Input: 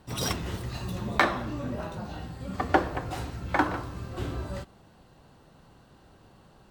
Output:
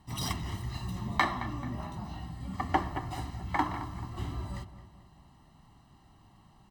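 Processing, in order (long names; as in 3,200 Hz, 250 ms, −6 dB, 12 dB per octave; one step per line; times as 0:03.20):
comb filter 1 ms, depth 79%
on a send: feedback echo with a low-pass in the loop 218 ms, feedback 49%, low-pass 2,600 Hz, level −13 dB
on the sum: level −6.5 dB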